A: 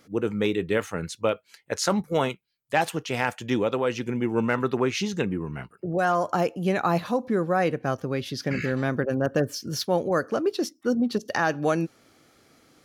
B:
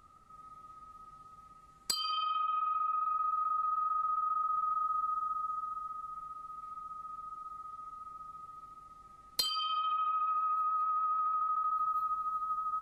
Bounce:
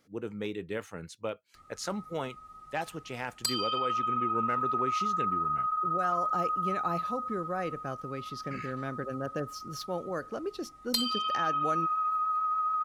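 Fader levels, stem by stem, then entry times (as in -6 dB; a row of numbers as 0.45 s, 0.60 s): -11.0 dB, +2.5 dB; 0.00 s, 1.55 s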